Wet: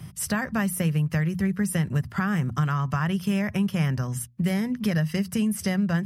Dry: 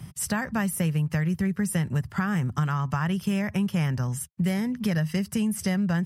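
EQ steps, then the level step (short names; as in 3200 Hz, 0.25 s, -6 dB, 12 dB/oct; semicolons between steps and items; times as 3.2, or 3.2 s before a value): bell 7700 Hz -3 dB 0.5 oct; notches 60/120/180/240 Hz; notch 870 Hz, Q 12; +1.5 dB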